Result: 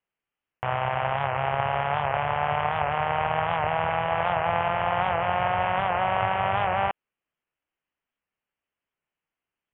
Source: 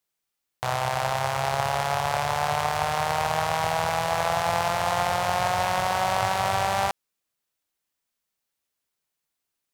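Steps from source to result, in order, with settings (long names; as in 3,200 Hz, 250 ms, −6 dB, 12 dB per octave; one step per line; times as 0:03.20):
Butterworth low-pass 3,100 Hz 96 dB per octave
wow of a warped record 78 rpm, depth 100 cents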